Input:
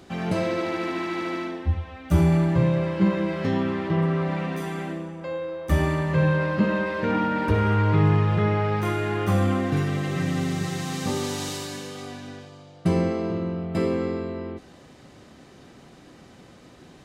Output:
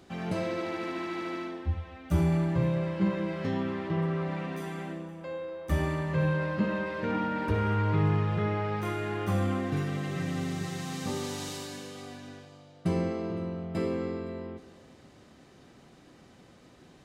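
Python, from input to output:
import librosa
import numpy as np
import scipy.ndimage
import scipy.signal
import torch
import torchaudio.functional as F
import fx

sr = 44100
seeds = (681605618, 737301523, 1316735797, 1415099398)

y = x + 10.0 ** (-20.5 / 20.0) * np.pad(x, (int(514 * sr / 1000.0), 0))[:len(x)]
y = F.gain(torch.from_numpy(y), -6.5).numpy()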